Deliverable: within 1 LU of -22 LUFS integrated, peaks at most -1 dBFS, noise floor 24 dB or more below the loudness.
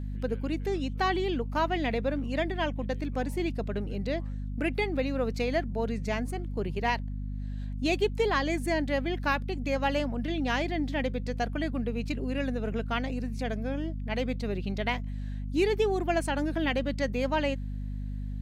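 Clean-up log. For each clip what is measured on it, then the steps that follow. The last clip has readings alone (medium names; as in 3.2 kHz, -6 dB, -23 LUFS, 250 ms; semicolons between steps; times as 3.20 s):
hum 50 Hz; highest harmonic 250 Hz; hum level -32 dBFS; loudness -30.5 LUFS; peak level -13.5 dBFS; loudness target -22.0 LUFS
-> hum notches 50/100/150/200/250 Hz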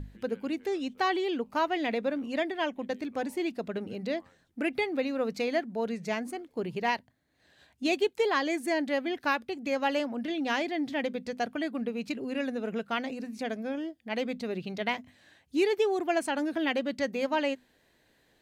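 hum not found; loudness -31.5 LUFS; peak level -14.5 dBFS; loudness target -22.0 LUFS
-> trim +9.5 dB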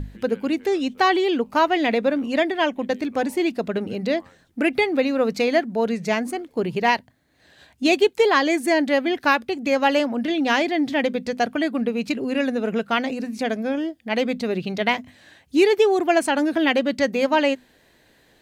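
loudness -22.0 LUFS; peak level -5.0 dBFS; noise floor -58 dBFS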